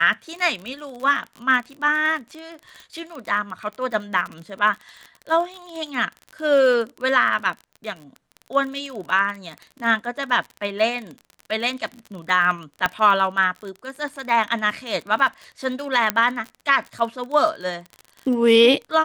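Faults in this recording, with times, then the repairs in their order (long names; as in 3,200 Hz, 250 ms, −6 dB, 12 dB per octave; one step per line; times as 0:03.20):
surface crackle 39 per second −29 dBFS
0:12.86: click −7 dBFS
0:16.10: click −3 dBFS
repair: click removal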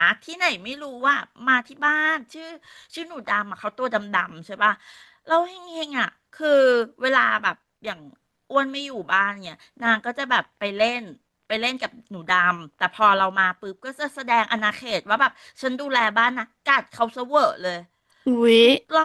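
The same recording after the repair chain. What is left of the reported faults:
none of them is left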